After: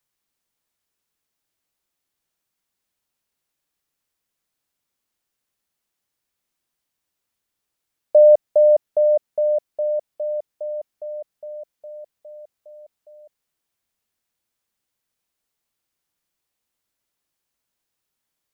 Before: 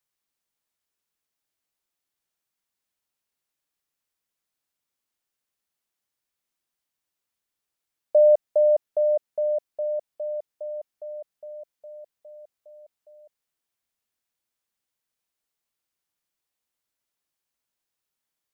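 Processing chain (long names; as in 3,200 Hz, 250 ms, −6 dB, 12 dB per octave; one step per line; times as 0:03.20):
low-shelf EQ 390 Hz +3.5 dB
level +4 dB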